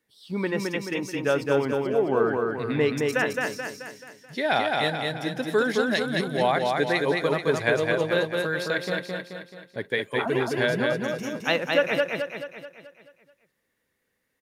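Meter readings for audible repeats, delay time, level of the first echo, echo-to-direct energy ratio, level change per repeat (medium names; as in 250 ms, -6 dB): 6, 216 ms, -3.0 dB, -2.0 dB, -6.0 dB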